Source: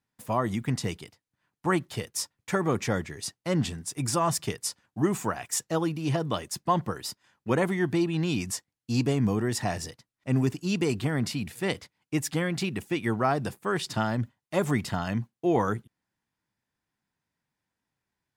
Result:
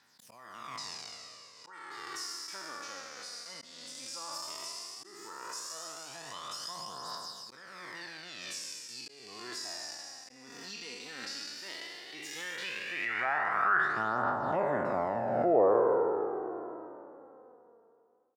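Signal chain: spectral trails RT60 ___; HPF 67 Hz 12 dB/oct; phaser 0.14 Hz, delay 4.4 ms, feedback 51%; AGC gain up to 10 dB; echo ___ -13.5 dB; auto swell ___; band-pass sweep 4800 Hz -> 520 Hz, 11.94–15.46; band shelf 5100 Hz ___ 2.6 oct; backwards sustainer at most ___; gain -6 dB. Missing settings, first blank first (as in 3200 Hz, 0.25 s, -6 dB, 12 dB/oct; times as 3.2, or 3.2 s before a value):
2.91 s, 0.152 s, 0.378 s, -10.5 dB, 32 dB/s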